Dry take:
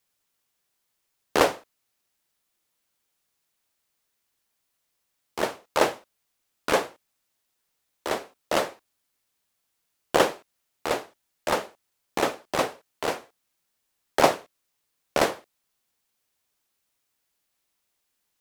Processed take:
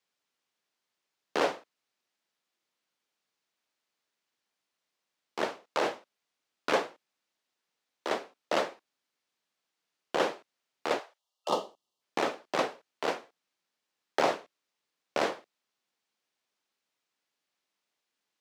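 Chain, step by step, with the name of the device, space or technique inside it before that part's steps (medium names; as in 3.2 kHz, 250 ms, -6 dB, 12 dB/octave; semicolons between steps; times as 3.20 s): 10.99–11.49 s: high-pass 530 Hz 24 dB/octave; 11.19–12.01 s: time-frequency box 1.3–2.7 kHz -18 dB; DJ mixer with the lows and highs turned down (three-band isolator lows -21 dB, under 150 Hz, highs -15 dB, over 6.5 kHz; peak limiter -12 dBFS, peak gain reduction 8.5 dB); trim -3 dB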